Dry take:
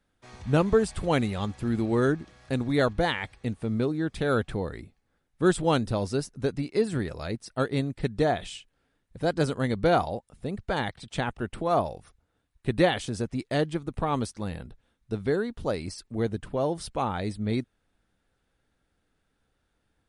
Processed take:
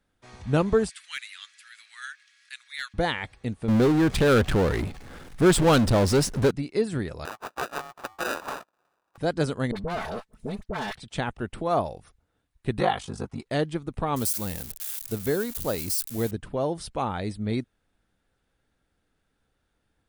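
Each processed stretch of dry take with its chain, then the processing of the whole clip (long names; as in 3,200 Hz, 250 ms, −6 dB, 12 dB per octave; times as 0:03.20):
0:00.89–0:02.94: Butterworth high-pass 1,600 Hz + hard clipping −23 dBFS
0:03.68–0:06.51: high-shelf EQ 8,700 Hz −5 dB + power curve on the samples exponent 0.5
0:07.25–0:09.18: spectral tilt +4.5 dB per octave + sample-rate reduction 1,100 Hz + ring modulation 980 Hz
0:09.71–0:10.95: lower of the sound and its delayed copy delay 4.6 ms + all-pass dispersion highs, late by 48 ms, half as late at 1,000 Hz + downward compressor, threshold −26 dBFS
0:12.79–0:13.47: flat-topped bell 1,000 Hz +9 dB 1.1 octaves + ring modulation 25 Hz + notch comb filter 300 Hz
0:14.16–0:16.31: spike at every zero crossing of −29.5 dBFS + high-shelf EQ 8,300 Hz +11.5 dB
whole clip: no processing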